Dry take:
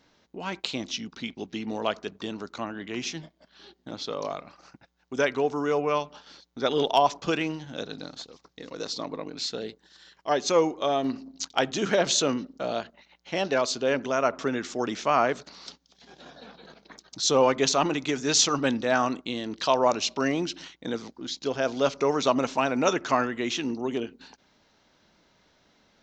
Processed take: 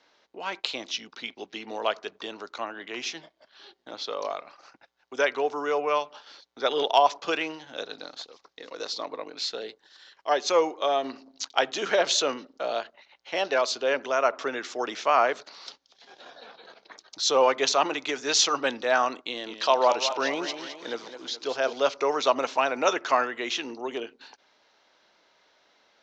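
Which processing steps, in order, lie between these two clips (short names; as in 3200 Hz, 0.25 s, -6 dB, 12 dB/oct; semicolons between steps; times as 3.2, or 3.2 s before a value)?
three-band isolator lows -21 dB, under 380 Hz, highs -17 dB, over 6700 Hz; 19.21–21.73 warbling echo 0.209 s, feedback 49%, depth 121 cents, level -10 dB; gain +2 dB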